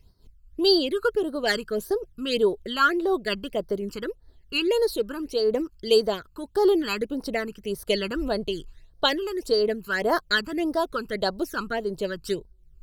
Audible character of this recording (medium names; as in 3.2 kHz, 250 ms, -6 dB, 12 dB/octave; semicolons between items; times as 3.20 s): phasing stages 12, 1.7 Hz, lowest notch 610–2600 Hz; random flutter of the level